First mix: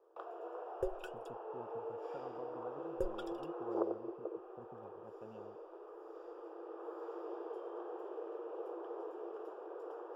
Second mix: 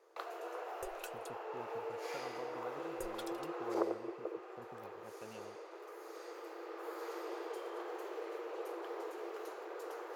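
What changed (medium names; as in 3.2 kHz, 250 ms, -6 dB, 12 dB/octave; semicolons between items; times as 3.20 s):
second sound -10.5 dB; master: remove boxcar filter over 21 samples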